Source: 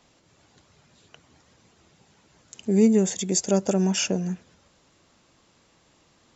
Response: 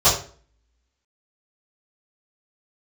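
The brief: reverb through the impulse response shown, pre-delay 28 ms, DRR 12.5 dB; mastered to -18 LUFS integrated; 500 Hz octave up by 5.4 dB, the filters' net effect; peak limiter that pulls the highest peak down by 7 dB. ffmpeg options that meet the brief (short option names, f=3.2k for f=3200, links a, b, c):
-filter_complex "[0:a]equalizer=f=500:t=o:g=7,alimiter=limit=-12dB:level=0:latency=1,asplit=2[a][b];[1:a]atrim=start_sample=2205,adelay=28[c];[b][c]afir=irnorm=-1:irlink=0,volume=-33.5dB[d];[a][d]amix=inputs=2:normalize=0,volume=5dB"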